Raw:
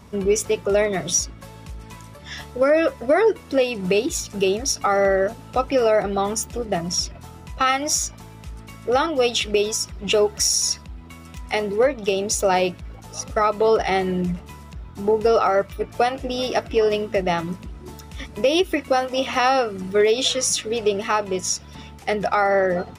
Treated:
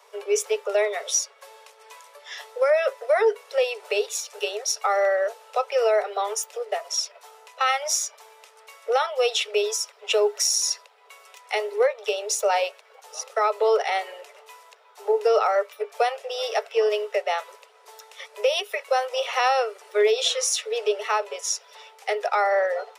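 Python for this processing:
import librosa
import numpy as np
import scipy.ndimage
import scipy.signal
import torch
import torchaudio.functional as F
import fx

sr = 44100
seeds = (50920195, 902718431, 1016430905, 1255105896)

y = scipy.signal.sosfilt(scipy.signal.cheby1(10, 1.0, 410.0, 'highpass', fs=sr, output='sos'), x)
y = y * 10.0 ** (-2.0 / 20.0)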